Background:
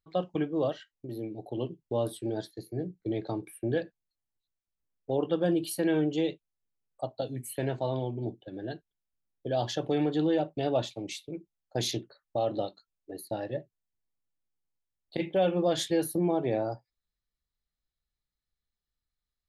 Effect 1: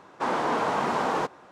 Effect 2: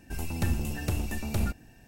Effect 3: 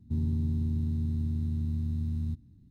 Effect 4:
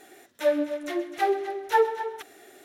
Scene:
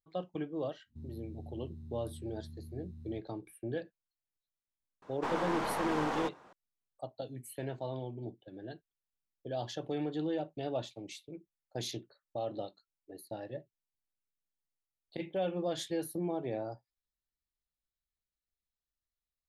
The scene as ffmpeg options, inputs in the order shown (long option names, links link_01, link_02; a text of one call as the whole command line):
ffmpeg -i bed.wav -i cue0.wav -i cue1.wav -i cue2.wav -filter_complex "[0:a]volume=-8dB[link_01];[1:a]aeval=exprs='clip(val(0),-1,0.0376)':channel_layout=same[link_02];[3:a]atrim=end=2.7,asetpts=PTS-STARTPTS,volume=-17.5dB,afade=type=in:duration=0.1,afade=type=out:start_time=2.6:duration=0.1,adelay=850[link_03];[link_02]atrim=end=1.51,asetpts=PTS-STARTPTS,volume=-7dB,afade=type=in:duration=0.004:curve=hsin,afade=type=out:start_time=1.506:duration=0.004:curve=hsin,adelay=5020[link_04];[link_01][link_03][link_04]amix=inputs=3:normalize=0" out.wav